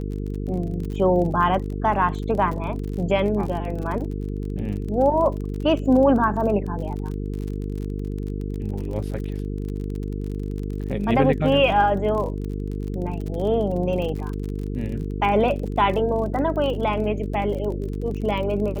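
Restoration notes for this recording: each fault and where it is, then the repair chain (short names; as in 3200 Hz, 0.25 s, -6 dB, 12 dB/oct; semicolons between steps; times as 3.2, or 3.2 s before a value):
buzz 50 Hz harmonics 9 -28 dBFS
crackle 40/s -30 dBFS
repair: de-click; de-hum 50 Hz, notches 9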